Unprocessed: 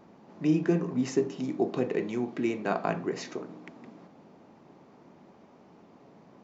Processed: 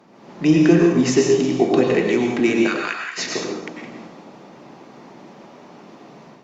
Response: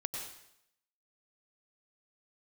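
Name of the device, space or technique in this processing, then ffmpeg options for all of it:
far-field microphone of a smart speaker: -filter_complex "[0:a]asplit=3[link_01][link_02][link_03];[link_01]afade=type=out:start_time=2.66:duration=0.02[link_04];[link_02]highpass=frequency=1400:width=0.5412,highpass=frequency=1400:width=1.3066,afade=type=in:start_time=2.66:duration=0.02,afade=type=out:start_time=3.17:duration=0.02[link_05];[link_03]afade=type=in:start_time=3.17:duration=0.02[link_06];[link_04][link_05][link_06]amix=inputs=3:normalize=0,equalizer=frequency=4400:width=0.32:gain=6[link_07];[1:a]atrim=start_sample=2205[link_08];[link_07][link_08]afir=irnorm=-1:irlink=0,highpass=frequency=130:width=0.5412,highpass=frequency=130:width=1.3066,dynaudnorm=framelen=140:gausssize=3:maxgain=7dB,volume=3.5dB" -ar 48000 -c:a libopus -b:a 48k

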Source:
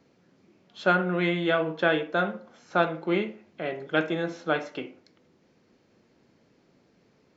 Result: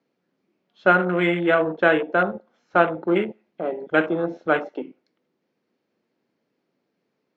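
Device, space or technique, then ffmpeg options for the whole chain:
over-cleaned archive recording: -af "highpass=190,lowpass=5200,afwtdn=0.0224,volume=6dB"

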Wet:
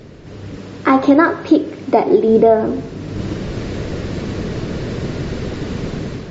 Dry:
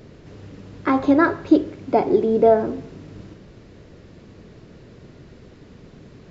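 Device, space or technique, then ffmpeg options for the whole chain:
low-bitrate web radio: -filter_complex "[0:a]asettb=1/sr,asplit=3[link_01][link_02][link_03];[link_01]atrim=end=0.574[link_04];[link_02]atrim=start=0.57:end=2.28,asetpts=PTS-STARTPTS,afade=type=in:duration=0.004:curve=qsin,afade=type=out:start_time=1.706:duration=0.004:curve=qsin,highpass=frequency=190:poles=1[link_05];[link_03]atrim=start=2.276[link_06];[link_04][link_05]acrossfade=duration=0.004:curve1=hsin:curve2=qsin[link_07];[link_07][link_06]acrossfade=duration=0.004:curve1=qsin:curve2=hsin,dynaudnorm=framelen=210:gausssize=5:maxgain=15.5dB,alimiter=limit=-7.5dB:level=0:latency=1:release=271,volume=6.5dB" -ar 44100 -c:a libmp3lame -b:a 40k

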